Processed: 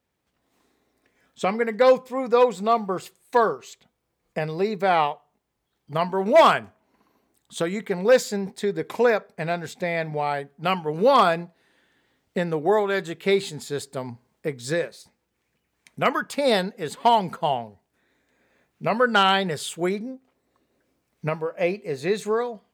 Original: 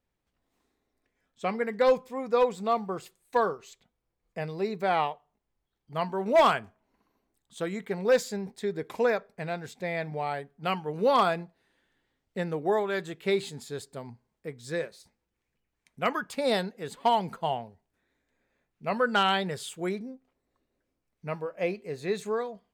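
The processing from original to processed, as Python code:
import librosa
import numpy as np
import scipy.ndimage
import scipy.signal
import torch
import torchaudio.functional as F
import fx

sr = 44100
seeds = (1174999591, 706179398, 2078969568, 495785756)

y = fx.recorder_agc(x, sr, target_db=-21.5, rise_db_per_s=5.5, max_gain_db=30)
y = scipy.signal.sosfilt(scipy.signal.butter(2, 53.0, 'highpass', fs=sr, output='sos'), y)
y = fx.low_shelf(y, sr, hz=82.0, db=-6.5)
y = y * 10.0 ** (6.0 / 20.0)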